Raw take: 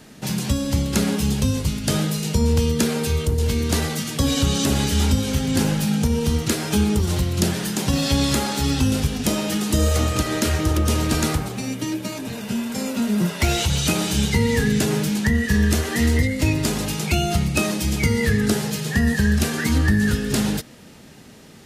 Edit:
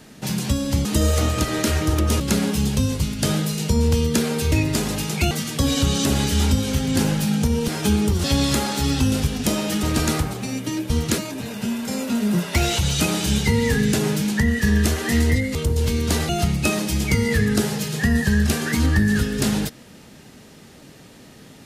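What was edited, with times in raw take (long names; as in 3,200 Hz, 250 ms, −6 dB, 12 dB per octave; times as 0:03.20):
0:03.17–0:03.91: swap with 0:16.42–0:17.21
0:06.28–0:06.56: move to 0:12.05
0:07.12–0:08.04: remove
0:09.63–0:10.98: move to 0:00.85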